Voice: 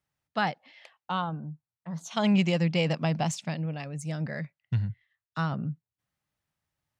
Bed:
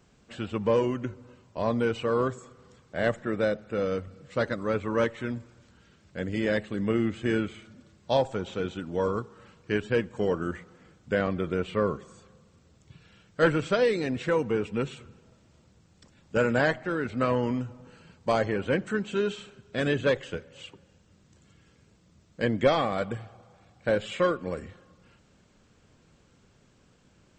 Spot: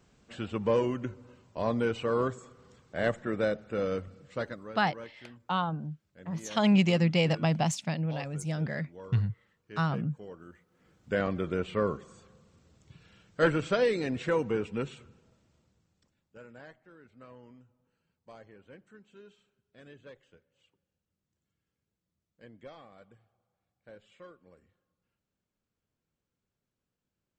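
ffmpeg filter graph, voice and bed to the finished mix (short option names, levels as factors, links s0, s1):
-filter_complex "[0:a]adelay=4400,volume=1.06[s0];[1:a]volume=5.01,afade=t=out:st=4.08:d=0.68:silence=0.149624,afade=t=in:st=10.69:d=0.5:silence=0.149624,afade=t=out:st=14.45:d=1.89:silence=0.0668344[s1];[s0][s1]amix=inputs=2:normalize=0"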